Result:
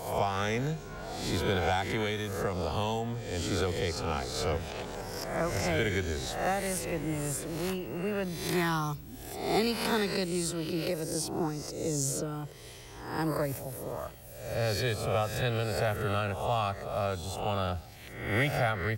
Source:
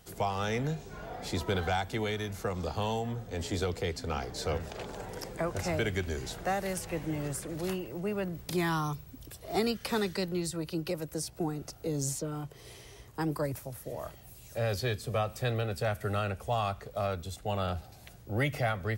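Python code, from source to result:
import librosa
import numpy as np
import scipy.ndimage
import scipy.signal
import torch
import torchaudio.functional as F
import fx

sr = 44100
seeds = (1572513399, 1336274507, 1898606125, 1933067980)

y = fx.spec_swells(x, sr, rise_s=0.77)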